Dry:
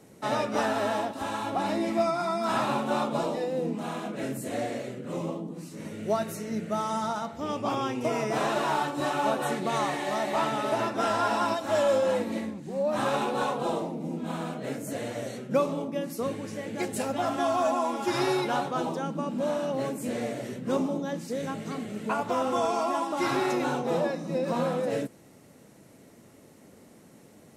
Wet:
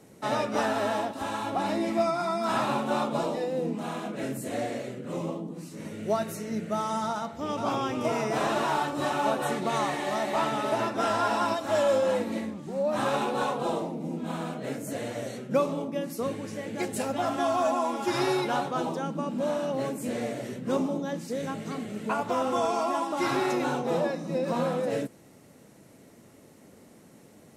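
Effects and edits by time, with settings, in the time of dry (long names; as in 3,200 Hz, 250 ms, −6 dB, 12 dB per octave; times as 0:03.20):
0:07.06–0:07.60: delay throw 510 ms, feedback 80%, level −5 dB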